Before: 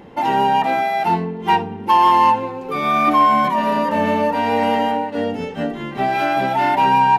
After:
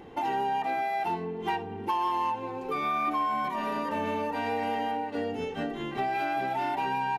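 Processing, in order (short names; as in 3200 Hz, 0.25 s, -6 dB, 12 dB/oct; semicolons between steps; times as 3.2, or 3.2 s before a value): comb 2.6 ms, depth 41%; compressor 3:1, threshold -23 dBFS, peak gain reduction 10.5 dB; gain -6 dB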